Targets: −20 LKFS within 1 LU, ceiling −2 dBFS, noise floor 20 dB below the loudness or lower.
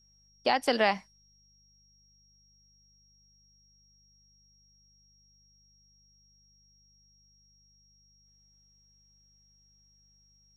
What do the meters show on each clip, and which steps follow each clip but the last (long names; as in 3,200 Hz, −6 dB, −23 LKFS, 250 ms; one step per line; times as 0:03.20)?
mains hum 50 Hz; hum harmonics up to 200 Hz; level of the hum −66 dBFS; interfering tone 5,600 Hz; level of the tone −63 dBFS; integrated loudness −28.0 LKFS; sample peak −10.5 dBFS; target loudness −20.0 LKFS
→ hum removal 50 Hz, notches 4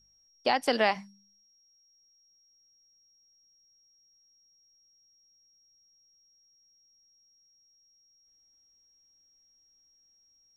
mains hum none found; interfering tone 5,600 Hz; level of the tone −63 dBFS
→ notch filter 5,600 Hz, Q 30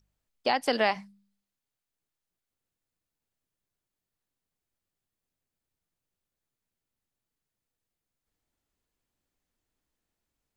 interfering tone none found; integrated loudness −28.0 LKFS; sample peak −11.0 dBFS; target loudness −20.0 LKFS
→ level +8 dB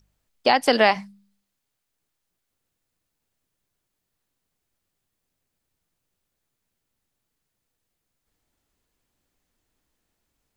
integrated loudness −20.0 LKFS; sample peak −3.0 dBFS; background noise floor −80 dBFS